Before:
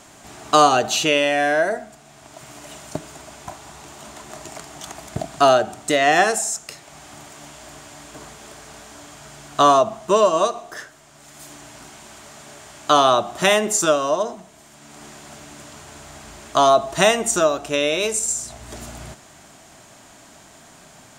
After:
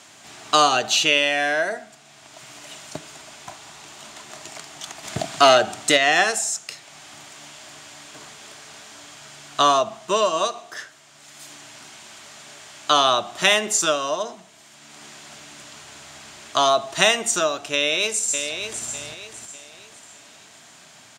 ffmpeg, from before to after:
-filter_complex "[0:a]asplit=3[s0][s1][s2];[s0]afade=t=out:st=5.03:d=0.02[s3];[s1]acontrast=54,afade=t=in:st=5.03:d=0.02,afade=t=out:st=5.96:d=0.02[s4];[s2]afade=t=in:st=5.96:d=0.02[s5];[s3][s4][s5]amix=inputs=3:normalize=0,asplit=2[s6][s7];[s7]afade=t=in:st=17.73:d=0.01,afade=t=out:st=18.85:d=0.01,aecho=0:1:600|1200|1800|2400:0.421697|0.147594|0.0516578|0.0180802[s8];[s6][s8]amix=inputs=2:normalize=0,highpass=f=84:w=0.5412,highpass=f=84:w=1.3066,equalizer=f=3500:t=o:w=2.8:g=10.5,volume=0.447"

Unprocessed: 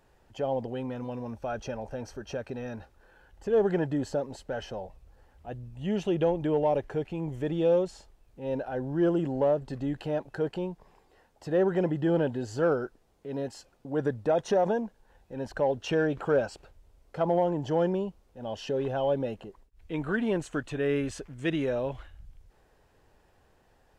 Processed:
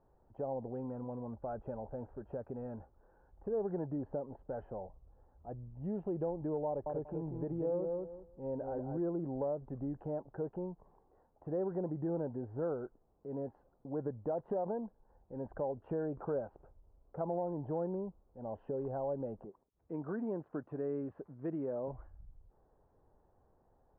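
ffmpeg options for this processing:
-filter_complex "[0:a]asettb=1/sr,asplit=3[s0][s1][s2];[s0]atrim=end=6.674[s3];[s1]atrim=start=6.67:end=8.98,asetpts=PTS-STARTPTS,afade=t=in:d=0.004:c=qsin,afade=t=out:st=2.306:d=0.004:c=qsin,asplit=2[s4][s5];[s5]adelay=190,lowpass=f=2000:p=1,volume=0.596,asplit=2[s6][s7];[s7]adelay=190,lowpass=f=2000:p=1,volume=0.18,asplit=2[s8][s9];[s9]adelay=190,lowpass=f=2000:p=1,volume=0.18[s10];[s4][s6][s8][s10]amix=inputs=4:normalize=0,atrim=end_sample=101871[s11];[s2]atrim=start=8.976[s12];[s3][s11]acrossfade=d=0.004:c1=hsin:c2=qsin[s13];[s13][s12]acrossfade=d=0.004:c1=qsin:c2=hsin,asettb=1/sr,asplit=3[s14][s15][s16];[s14]atrim=end=19.454[s17];[s15]atrim=start=19.45:end=21.88,asetpts=PTS-STARTPTS,afade=t=in:d=0.004:c=qsin,afade=t=out:st=2.426:d=0.004:c=qsin,highpass=140[s18];[s16]atrim=start=21.876[s19];[s17][s18]acrossfade=d=0.004:c1=hsin:c2=qsin[s20];[s20][s19]acrossfade=d=0.004:c1=qsin:c2=hsin,lowpass=f=1100:w=0.5412,lowpass=f=1100:w=1.3066,acompressor=threshold=0.0282:ratio=2,volume=0.531"

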